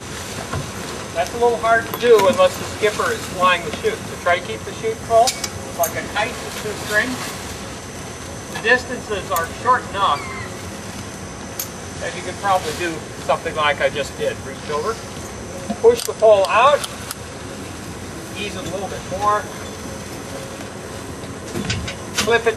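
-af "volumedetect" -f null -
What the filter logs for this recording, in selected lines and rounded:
mean_volume: -20.7 dB
max_volume: -2.4 dB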